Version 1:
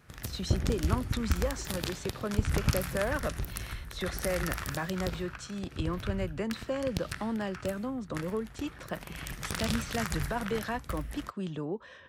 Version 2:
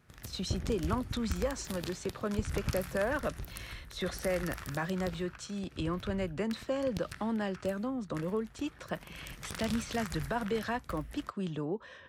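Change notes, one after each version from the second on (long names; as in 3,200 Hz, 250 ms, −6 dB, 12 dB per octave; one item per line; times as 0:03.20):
background −7.0 dB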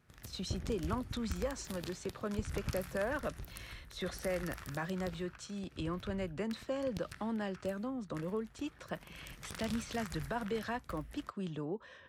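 speech −4.0 dB
background −4.5 dB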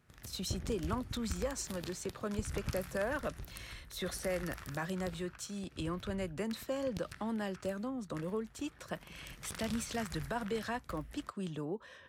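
speech: remove high-frequency loss of the air 75 metres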